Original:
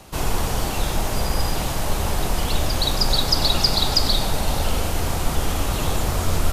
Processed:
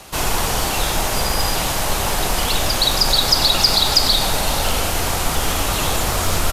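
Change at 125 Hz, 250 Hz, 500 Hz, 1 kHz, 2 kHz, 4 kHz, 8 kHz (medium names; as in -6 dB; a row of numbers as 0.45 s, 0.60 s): -1.0 dB, +0.5 dB, +3.5 dB, +5.5 dB, +7.0 dB, +6.0 dB, +8.0 dB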